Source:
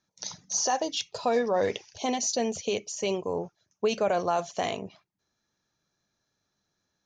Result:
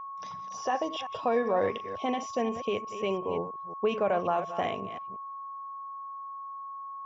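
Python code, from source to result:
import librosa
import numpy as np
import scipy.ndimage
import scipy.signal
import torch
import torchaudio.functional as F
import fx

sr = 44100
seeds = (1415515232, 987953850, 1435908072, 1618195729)

y = fx.reverse_delay(x, sr, ms=178, wet_db=-11)
y = y + 10.0 ** (-36.0 / 20.0) * np.sin(2.0 * np.pi * 1100.0 * np.arange(len(y)) / sr)
y = scipy.signal.savgol_filter(y, 25, 4, mode='constant')
y = y * 10.0 ** (-1.5 / 20.0)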